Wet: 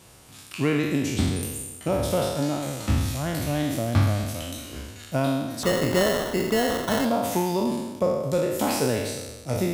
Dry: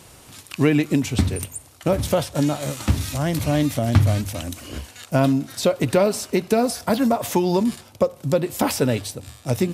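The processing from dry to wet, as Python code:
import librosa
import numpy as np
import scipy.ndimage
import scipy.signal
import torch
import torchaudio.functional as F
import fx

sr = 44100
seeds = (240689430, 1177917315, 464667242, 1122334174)

y = fx.spec_trails(x, sr, decay_s=1.21)
y = fx.sample_hold(y, sr, seeds[0], rate_hz=2400.0, jitter_pct=0, at=(5.63, 7.05))
y = F.gain(torch.from_numpy(y), -7.0).numpy()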